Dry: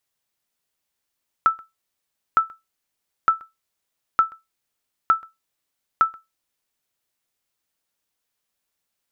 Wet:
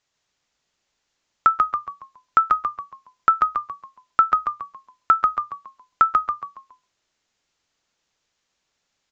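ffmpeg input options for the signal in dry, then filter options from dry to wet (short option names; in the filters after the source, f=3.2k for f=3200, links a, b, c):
-f lavfi -i "aevalsrc='0.422*(sin(2*PI*1320*mod(t,0.91))*exp(-6.91*mod(t,0.91)/0.19)+0.0531*sin(2*PI*1320*max(mod(t,0.91)-0.13,0))*exp(-6.91*max(mod(t,0.91)-0.13,0)/0.19))':d=5.46:s=44100"
-filter_complex "[0:a]aresample=16000,aresample=44100,asplit=6[a][b][c][d][e][f];[b]adelay=139,afreqshift=-61,volume=-3.5dB[g];[c]adelay=278,afreqshift=-122,volume=-12.6dB[h];[d]adelay=417,afreqshift=-183,volume=-21.7dB[i];[e]adelay=556,afreqshift=-244,volume=-30.9dB[j];[f]adelay=695,afreqshift=-305,volume=-40dB[k];[a][g][h][i][j][k]amix=inputs=6:normalize=0,asplit=2[l][m];[m]alimiter=limit=-18.5dB:level=0:latency=1:release=157,volume=1dB[n];[l][n]amix=inputs=2:normalize=0"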